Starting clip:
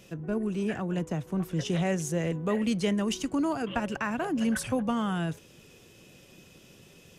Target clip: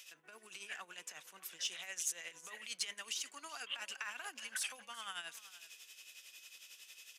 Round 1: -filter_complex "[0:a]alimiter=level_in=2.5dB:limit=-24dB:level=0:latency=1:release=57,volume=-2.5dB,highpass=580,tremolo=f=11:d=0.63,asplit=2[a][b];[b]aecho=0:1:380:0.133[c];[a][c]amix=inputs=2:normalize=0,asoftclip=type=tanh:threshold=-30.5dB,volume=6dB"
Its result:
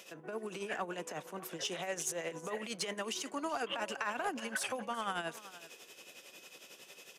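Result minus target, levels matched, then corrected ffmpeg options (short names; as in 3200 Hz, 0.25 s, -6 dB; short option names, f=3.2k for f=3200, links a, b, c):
500 Hz band +15.0 dB
-filter_complex "[0:a]alimiter=level_in=2.5dB:limit=-24dB:level=0:latency=1:release=57,volume=-2.5dB,highpass=2.2k,tremolo=f=11:d=0.63,asplit=2[a][b];[b]aecho=0:1:380:0.133[c];[a][c]amix=inputs=2:normalize=0,asoftclip=type=tanh:threshold=-30.5dB,volume=6dB"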